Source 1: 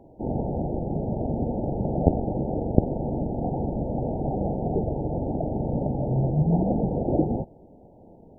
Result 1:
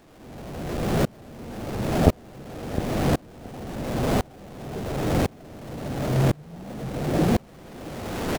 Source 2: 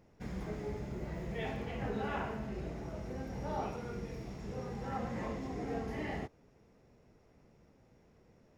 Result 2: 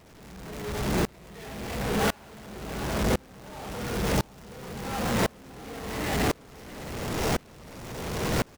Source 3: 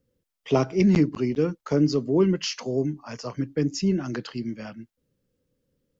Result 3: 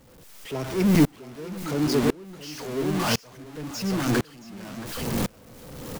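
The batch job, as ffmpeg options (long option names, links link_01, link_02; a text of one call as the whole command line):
ffmpeg -i in.wav -filter_complex "[0:a]aeval=exprs='val(0)+0.5*0.112*sgn(val(0))':channel_layout=same,asplit=2[link_01][link_02];[link_02]aecho=0:1:674:0.501[link_03];[link_01][link_03]amix=inputs=2:normalize=0,aeval=exprs='val(0)*pow(10,-31*if(lt(mod(-0.95*n/s,1),2*abs(-0.95)/1000),1-mod(-0.95*n/s,1)/(2*abs(-0.95)/1000),(mod(-0.95*n/s,1)-2*abs(-0.95)/1000)/(1-2*abs(-0.95)/1000))/20)':channel_layout=same,volume=1dB" out.wav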